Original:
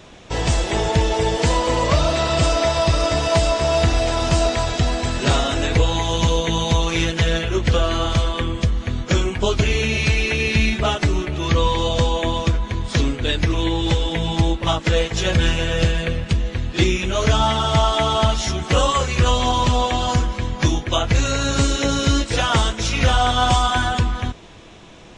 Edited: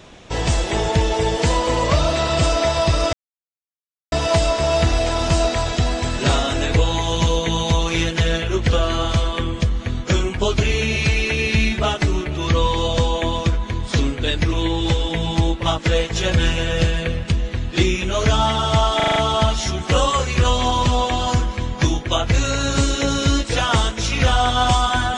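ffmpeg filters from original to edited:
-filter_complex "[0:a]asplit=7[a][b][c][d][e][f][g];[a]atrim=end=3.13,asetpts=PTS-STARTPTS,afade=t=out:st=3.126:d=0.004:c=hsin,apad=pad_dur=0.99[h];[b]atrim=start=3.13:end=18.012,asetpts=PTS-STARTPTS,afade=t=in:d=0.004:c=hsin[i];[c]atrim=start=17.968:end=18.012[j];[d]atrim=start=17.968:end=18.012[k];[e]atrim=start=17.968:end=18.012[l];[f]atrim=start=17.968:end=18.012[m];[g]atrim=start=17.968[n];[h][i]concat=n=2:v=0:a=1[o];[o][j]acrossfade=d=0.004:c1=hsin:c2=hsin[p];[p][k]acrossfade=d=0.004:c1=hsin:c2=hsin[q];[q][l]acrossfade=d=0.004:c1=hsin:c2=hsin[r];[r][m]acrossfade=d=0.004:c1=hsin:c2=hsin[s];[s][n]acrossfade=d=0.004:c1=hsin:c2=hsin"

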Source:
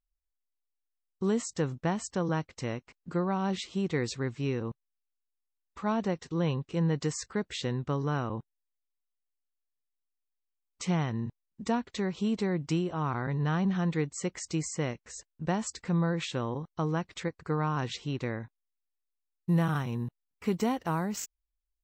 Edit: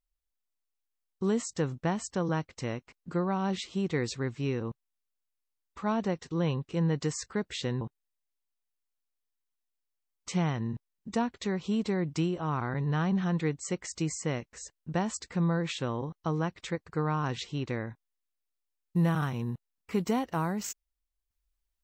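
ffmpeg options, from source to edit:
-filter_complex "[0:a]asplit=2[a][b];[a]atrim=end=7.812[c];[b]atrim=start=8.338[d];[c][d]acrossfade=d=0.004:c1=hsin:c2=hsin"

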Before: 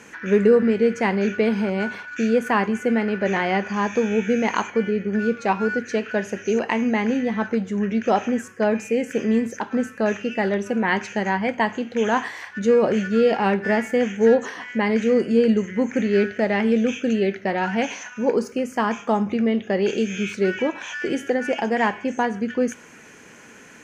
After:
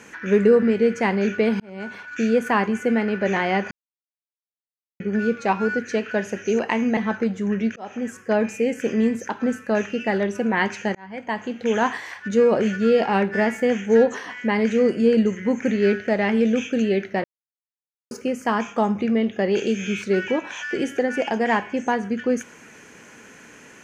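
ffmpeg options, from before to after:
-filter_complex "[0:a]asplit=9[a][b][c][d][e][f][g][h][i];[a]atrim=end=1.6,asetpts=PTS-STARTPTS,afade=t=out:st=1.596:d=0.004:c=hsin[j];[b]atrim=start=1.6:end=3.71,asetpts=PTS-STARTPTS,afade=t=in:d=0.57,afade=t=out:st=2.106:d=0.004:c=hsin[k];[c]atrim=start=3.71:end=5,asetpts=PTS-STARTPTS,volume=0[l];[d]atrim=start=5:end=6.972,asetpts=PTS-STARTPTS,afade=t=in:d=0.004:c=hsin[m];[e]atrim=start=7.278:end=8.07,asetpts=PTS-STARTPTS,afade=t=out:st=0.788:d=0.004:c=hsin[n];[f]atrim=start=8.07:end=11.26,asetpts=PTS-STARTPTS,afade=t=in:d=0.46,afade=t=out:st=3.186:d=0.004:c=hsin[o];[g]atrim=start=11.26:end=17.55,asetpts=PTS-STARTPTS,afade=t=in:d=0.69,afade=t=out:st=6.286:d=0.004:c=hsin[p];[h]atrim=start=17.55:end=18.42,asetpts=PTS-STARTPTS,volume=0[q];[i]atrim=start=18.42,asetpts=PTS-STARTPTS,afade=t=in:d=0.004:c=hsin[r];[j][k][l][m]concat=n=4:v=0:a=1[s];[n][o][p][q][r]concat=n=5:v=0:a=1[t];[s][t]acrossfade=d=0.004:c1=hsin:c2=hsin"

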